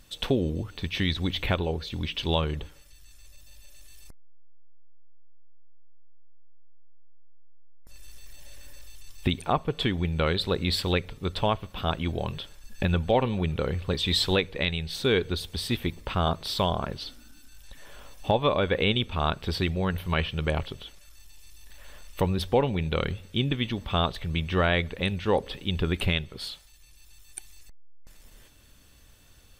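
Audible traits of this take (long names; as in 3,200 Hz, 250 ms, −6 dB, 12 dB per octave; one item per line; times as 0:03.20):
background noise floor −54 dBFS
spectral slope −4.0 dB per octave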